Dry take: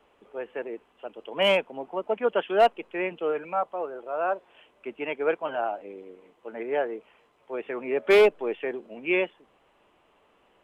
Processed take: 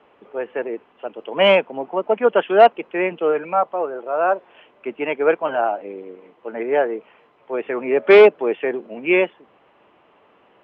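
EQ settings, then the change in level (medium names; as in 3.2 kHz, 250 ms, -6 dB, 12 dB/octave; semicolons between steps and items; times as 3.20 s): band-pass 100–2800 Hz; +8.5 dB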